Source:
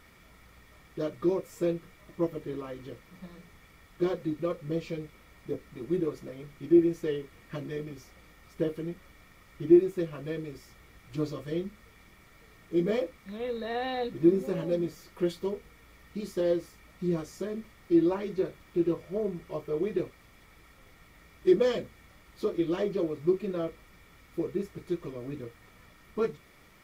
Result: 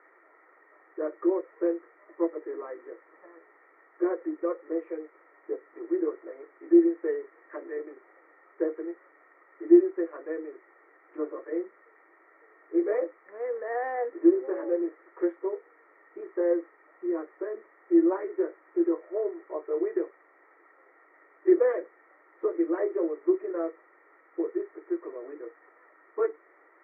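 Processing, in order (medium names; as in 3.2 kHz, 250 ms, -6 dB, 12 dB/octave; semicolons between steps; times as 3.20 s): Chebyshev band-pass 320–2000 Hz, order 5; trim +2.5 dB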